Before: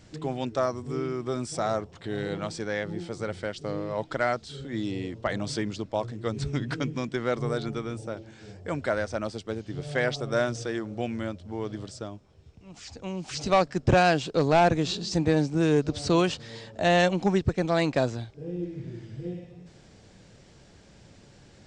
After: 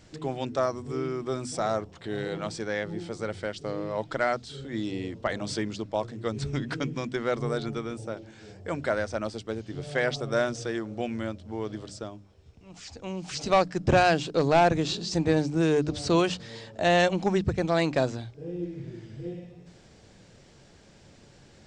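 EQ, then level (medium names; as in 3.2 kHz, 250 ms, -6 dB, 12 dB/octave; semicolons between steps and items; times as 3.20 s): hum notches 50/100/150/200/250/300 Hz; hum notches 60/120/180 Hz; 0.0 dB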